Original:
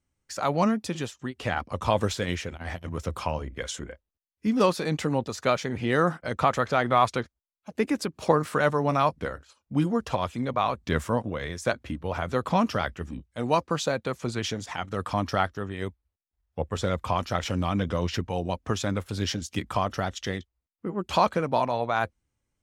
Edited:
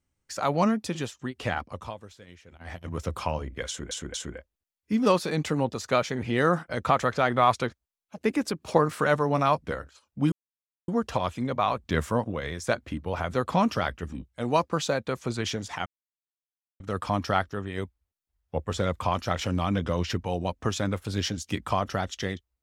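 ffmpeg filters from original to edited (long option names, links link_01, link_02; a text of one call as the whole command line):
ffmpeg -i in.wav -filter_complex "[0:a]asplit=7[link_01][link_02][link_03][link_04][link_05][link_06][link_07];[link_01]atrim=end=1.97,asetpts=PTS-STARTPTS,afade=type=out:start_time=1.47:duration=0.5:silence=0.0944061[link_08];[link_02]atrim=start=1.97:end=2.45,asetpts=PTS-STARTPTS,volume=-20.5dB[link_09];[link_03]atrim=start=2.45:end=3.912,asetpts=PTS-STARTPTS,afade=type=in:duration=0.5:silence=0.0944061[link_10];[link_04]atrim=start=3.678:end=3.912[link_11];[link_05]atrim=start=3.678:end=9.86,asetpts=PTS-STARTPTS,afade=type=out:start_time=6.178:duration=0.004:curve=hsin,apad=pad_dur=0.56[link_12];[link_06]atrim=start=9.86:end=14.84,asetpts=PTS-STARTPTS,afade=type=in:duration=0.004:curve=hsin,afade=type=out:start_time=4.976:duration=0.004:curve=hsin,apad=pad_dur=0.94[link_13];[link_07]atrim=start=14.84,asetpts=PTS-STARTPTS,afade=type=in:duration=0.004:curve=hsin[link_14];[link_08][link_09][link_10]concat=n=3:v=0:a=1[link_15];[link_15][link_11]acrossfade=duration=0.004:curve1=hsin:curve2=hsin[link_16];[link_12][link_13][link_14]concat=n=3:v=0:a=1[link_17];[link_16][link_17]acrossfade=duration=0.004:curve1=hsin:curve2=hsin" out.wav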